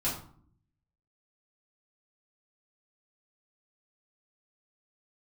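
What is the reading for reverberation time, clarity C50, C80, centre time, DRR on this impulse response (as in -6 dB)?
0.55 s, 6.0 dB, 10.0 dB, 33 ms, -8.0 dB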